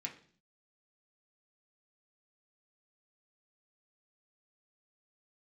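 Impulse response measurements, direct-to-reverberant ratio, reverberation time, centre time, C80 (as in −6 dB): −1.0 dB, 0.50 s, 14 ms, 16.0 dB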